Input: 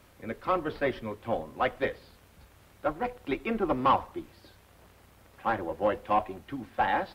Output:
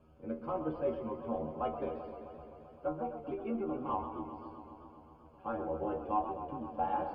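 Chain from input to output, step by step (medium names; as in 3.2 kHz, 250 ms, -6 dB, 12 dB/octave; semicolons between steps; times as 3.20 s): boxcar filter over 23 samples; peak limiter -23 dBFS, peak gain reduction 7 dB; 2.88–3.89 s: compression 3:1, threshold -33 dBFS, peak gain reduction 5 dB; inharmonic resonator 77 Hz, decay 0.28 s, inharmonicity 0.002; modulated delay 130 ms, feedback 78%, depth 104 cents, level -10 dB; trim +5.5 dB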